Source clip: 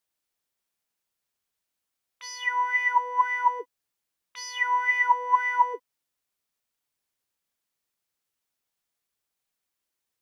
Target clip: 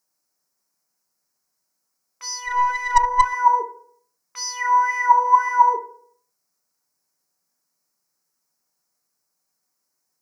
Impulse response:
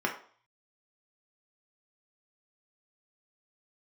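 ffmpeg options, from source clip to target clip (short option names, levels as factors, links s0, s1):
-filter_complex "[0:a]asplit=2[s0][s1];[1:a]atrim=start_sample=2205,asetrate=32193,aresample=44100,lowpass=4100[s2];[s1][s2]afir=irnorm=-1:irlink=0,volume=0.422[s3];[s0][s3]amix=inputs=2:normalize=0,asettb=1/sr,asplit=3[s4][s5][s6];[s4]atrim=end=2.404[s7];[s5]atrim=start=2.4:end=3.33,asetpts=PTS-STARTPTS,afade=t=in:d=0.004:c=qsin,afade=t=out:st=0.926:d=0.004:c=qsin,aeval=exprs='0.631*(cos(1*acos(clip(val(0)/0.631,-1,1)))-cos(1*PI/2))+0.141*(cos(2*acos(clip(val(0)/0.631,-1,1)))-cos(2*PI/2))+0.0398*(cos(3*acos(clip(val(0)/0.631,-1,1)))-cos(3*PI/2))+0.0398*(cos(6*acos(clip(val(0)/0.631,-1,1)))-cos(6*PI/2))+0.02*(cos(8*acos(clip(val(0)/0.631,-1,1)))-cos(8*PI/2))':c=same[s8];[s6]atrim=start=3.326[s9];[s7][s8]acrossfade=d=0.004:c1=hsin:c2=qsin[s10];[s10][s9]acrossfade=d=0.004:c1=qsin:c2=hsin,highshelf=f=4300:t=q:w=3:g=7"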